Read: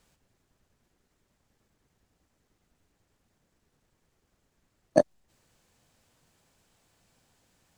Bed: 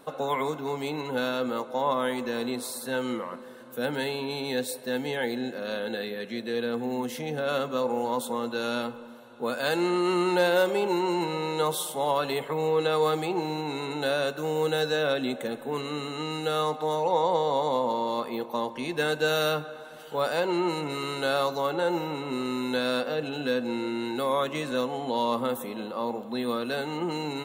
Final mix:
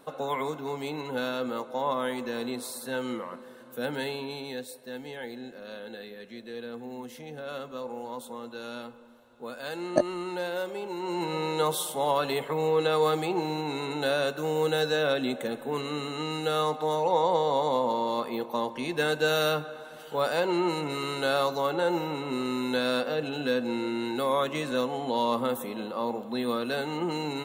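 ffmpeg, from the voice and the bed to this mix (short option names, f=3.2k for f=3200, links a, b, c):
-filter_complex "[0:a]adelay=5000,volume=-2.5dB[a];[1:a]volume=7dB,afade=t=out:st=4.1:d=0.56:silence=0.446684,afade=t=in:st=10.96:d=0.42:silence=0.334965[b];[a][b]amix=inputs=2:normalize=0"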